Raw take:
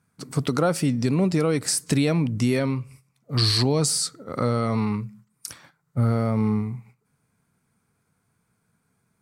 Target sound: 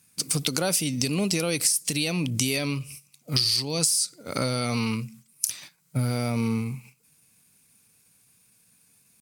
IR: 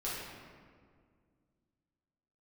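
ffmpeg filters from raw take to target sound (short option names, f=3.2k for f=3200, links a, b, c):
-af "aexciter=amount=4.1:drive=7.5:freq=2.1k,acompressor=threshold=-20dB:ratio=8,asetrate=46722,aresample=44100,atempo=0.943874,volume=-1dB"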